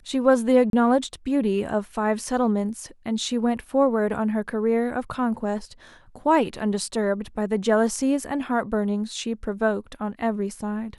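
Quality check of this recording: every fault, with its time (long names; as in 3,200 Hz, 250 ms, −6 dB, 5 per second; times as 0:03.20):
0:00.70–0:00.73: drop-out 32 ms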